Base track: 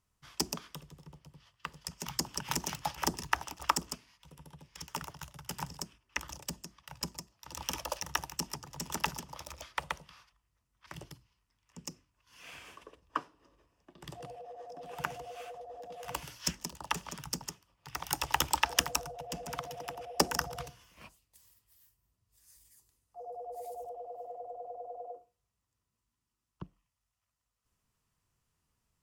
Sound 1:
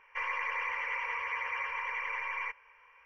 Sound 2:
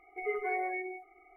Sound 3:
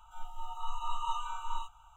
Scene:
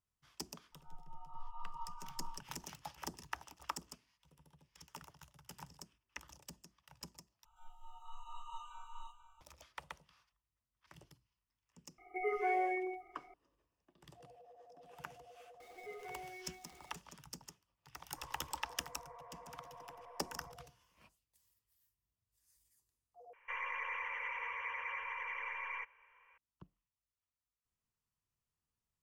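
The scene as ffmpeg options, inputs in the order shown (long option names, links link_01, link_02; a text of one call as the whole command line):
ffmpeg -i bed.wav -i cue0.wav -i cue1.wav -i cue2.wav -filter_complex "[3:a]asplit=2[link_01][link_02];[2:a]asplit=2[link_03][link_04];[1:a]asplit=2[link_05][link_06];[0:a]volume=-13dB[link_07];[link_01]lowpass=1100[link_08];[link_02]aecho=1:1:488:0.251[link_09];[link_03]aecho=1:1:5.6:0.39[link_10];[link_04]aeval=exprs='val(0)+0.5*0.0112*sgn(val(0))':channel_layout=same[link_11];[link_05]lowpass=frequency=1100:width=0.5412,lowpass=frequency=1100:width=1.3066[link_12];[link_06]asuperstop=centerf=4700:order=12:qfactor=2.2[link_13];[link_07]asplit=3[link_14][link_15][link_16];[link_14]atrim=end=7.454[link_17];[link_09]atrim=end=1.96,asetpts=PTS-STARTPTS,volume=-14dB[link_18];[link_15]atrim=start=9.406:end=23.334[link_19];[link_13]atrim=end=3.05,asetpts=PTS-STARTPTS,volume=-6.5dB[link_20];[link_16]atrim=start=26.376[link_21];[link_08]atrim=end=1.96,asetpts=PTS-STARTPTS,volume=-10dB,afade=type=in:duration=0.004:curve=hsin,afade=type=out:start_time=1.956:duration=0.004:curve=hsin,adelay=720[link_22];[link_10]atrim=end=1.36,asetpts=PTS-STARTPTS,volume=-1.5dB,afade=type=in:duration=0.004:curve=hsin,afade=type=out:start_time=1.356:duration=0.004:curve=hsin,adelay=11980[link_23];[link_11]atrim=end=1.36,asetpts=PTS-STARTPTS,volume=-17dB,afade=type=in:duration=0.004:curve=hsin,afade=type=out:start_time=1.356:duration=0.004:curve=hsin,adelay=15600[link_24];[link_12]atrim=end=3.05,asetpts=PTS-STARTPTS,volume=-14.5dB,afade=type=in:duration=0.004:curve=hsin,afade=type=out:start_time=3.046:duration=0.004:curve=hsin,adelay=18010[link_25];[link_17][link_18]acrossfade=duration=0.004:curve1=hsin:curve2=hsin[link_26];[link_26][link_19]acrossfade=duration=0.004:curve1=hsin:curve2=hsin[link_27];[link_27][link_20]acrossfade=duration=0.004:curve1=hsin:curve2=hsin[link_28];[link_28][link_21]acrossfade=duration=0.004:curve1=hsin:curve2=hsin[link_29];[link_29][link_22][link_23][link_24][link_25]amix=inputs=5:normalize=0" out.wav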